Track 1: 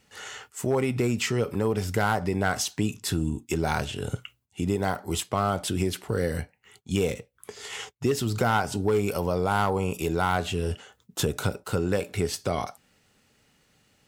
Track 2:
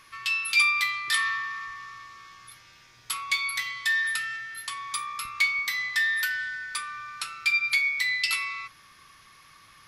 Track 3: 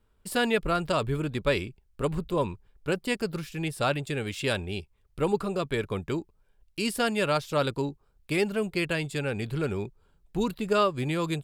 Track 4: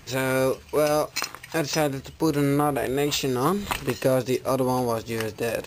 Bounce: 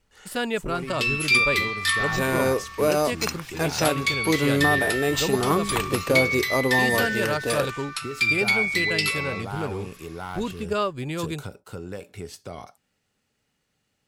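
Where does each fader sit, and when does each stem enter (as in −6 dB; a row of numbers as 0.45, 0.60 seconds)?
−10.0, +2.0, −1.5, 0.0 decibels; 0.00, 0.75, 0.00, 2.05 seconds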